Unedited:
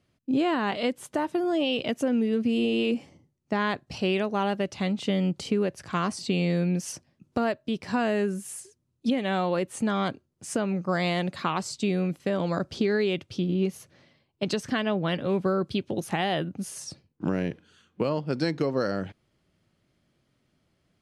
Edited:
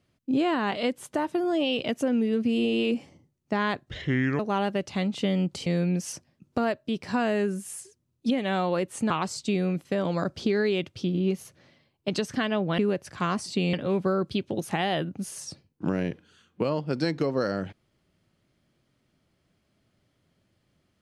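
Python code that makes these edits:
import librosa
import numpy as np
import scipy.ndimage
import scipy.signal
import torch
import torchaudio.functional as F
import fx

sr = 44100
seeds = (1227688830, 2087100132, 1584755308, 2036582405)

y = fx.edit(x, sr, fx.speed_span(start_s=3.9, length_s=0.34, speed=0.69),
    fx.move(start_s=5.51, length_s=0.95, to_s=15.13),
    fx.cut(start_s=9.9, length_s=1.55), tone=tone)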